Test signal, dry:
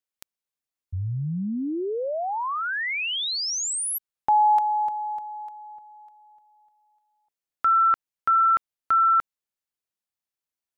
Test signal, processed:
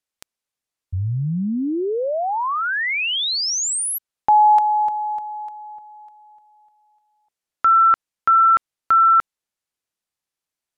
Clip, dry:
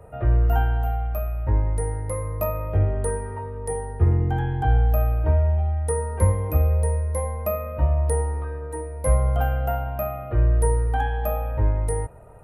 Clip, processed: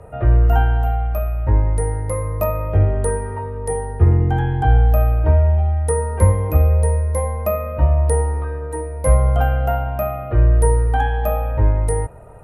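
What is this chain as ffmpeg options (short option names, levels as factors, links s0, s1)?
-af "lowpass=12000,volume=1.88"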